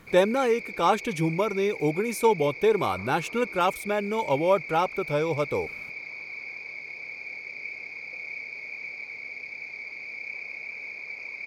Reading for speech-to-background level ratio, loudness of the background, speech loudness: 10.5 dB, -36.0 LUFS, -25.5 LUFS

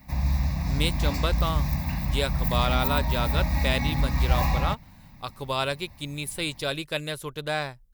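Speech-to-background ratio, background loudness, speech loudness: -3.5 dB, -27.0 LUFS, -30.5 LUFS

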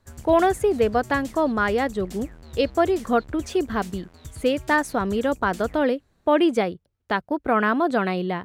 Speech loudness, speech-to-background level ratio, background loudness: -23.0 LUFS, 18.5 dB, -41.5 LUFS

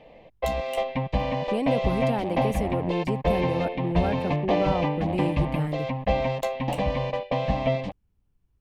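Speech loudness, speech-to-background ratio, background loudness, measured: -30.0 LUFS, -3.0 dB, -27.0 LUFS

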